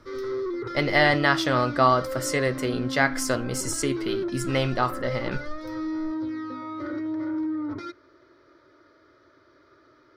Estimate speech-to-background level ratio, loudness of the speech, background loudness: 7.5 dB, -24.5 LUFS, -32.0 LUFS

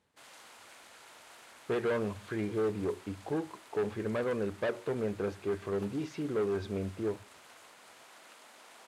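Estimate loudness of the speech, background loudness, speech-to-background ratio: -34.5 LUFS, -54.0 LUFS, 19.5 dB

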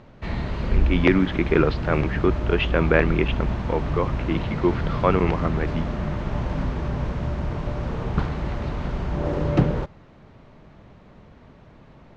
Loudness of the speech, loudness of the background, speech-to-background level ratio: -24.0 LUFS, -27.0 LUFS, 3.0 dB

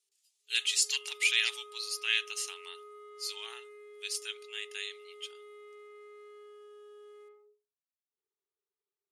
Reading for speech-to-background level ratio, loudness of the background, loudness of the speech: 20.0 dB, -51.5 LUFS, -31.5 LUFS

